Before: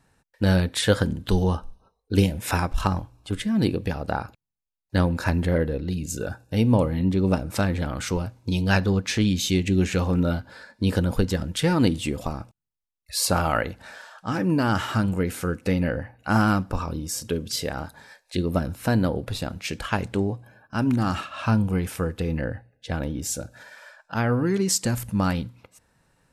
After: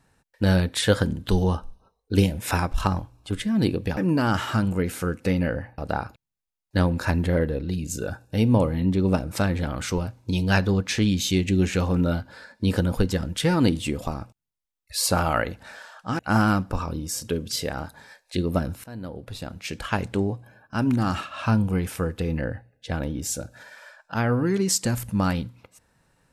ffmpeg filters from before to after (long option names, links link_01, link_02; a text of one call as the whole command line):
ffmpeg -i in.wav -filter_complex "[0:a]asplit=5[link_01][link_02][link_03][link_04][link_05];[link_01]atrim=end=3.972[link_06];[link_02]atrim=start=14.378:end=16.192[link_07];[link_03]atrim=start=3.968:end=14.382[link_08];[link_04]atrim=start=16.188:end=18.84,asetpts=PTS-STARTPTS,afade=type=out:start_time=2.648:duration=0.004:curve=hsin:silence=0.0668344[link_09];[link_05]atrim=start=18.84,asetpts=PTS-STARTPTS,afade=type=in:duration=1.14:silence=0.0668344[link_10];[link_06][link_07]acrossfade=duration=0.004:curve1=hsin:curve2=hsin[link_11];[link_11][link_08]acrossfade=duration=0.004:curve1=hsin:curve2=hsin[link_12];[link_09][link_10]concat=n=2:v=0:a=1[link_13];[link_12][link_13]acrossfade=duration=0.004:curve1=hsin:curve2=hsin" out.wav